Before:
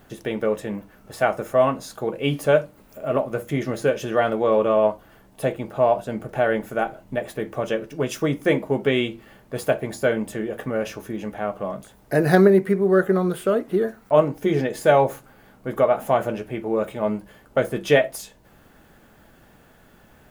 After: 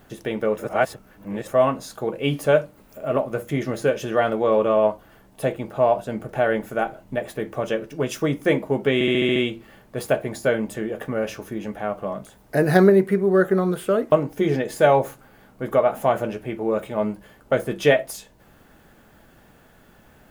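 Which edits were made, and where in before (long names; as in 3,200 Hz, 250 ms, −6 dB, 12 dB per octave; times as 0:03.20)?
0:00.58–0:01.48: reverse
0:08.94: stutter 0.07 s, 7 plays
0:13.70–0:14.17: remove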